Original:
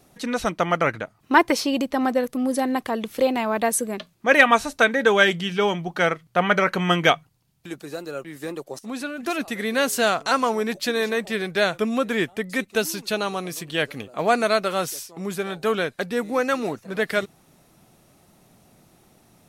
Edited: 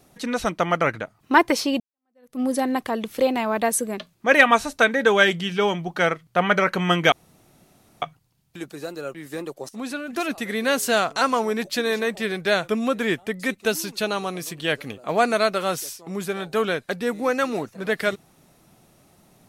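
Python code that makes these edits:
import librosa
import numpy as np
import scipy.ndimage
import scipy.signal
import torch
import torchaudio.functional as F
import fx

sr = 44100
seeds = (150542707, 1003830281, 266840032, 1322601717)

y = fx.edit(x, sr, fx.fade_in_span(start_s=1.8, length_s=0.6, curve='exp'),
    fx.insert_room_tone(at_s=7.12, length_s=0.9), tone=tone)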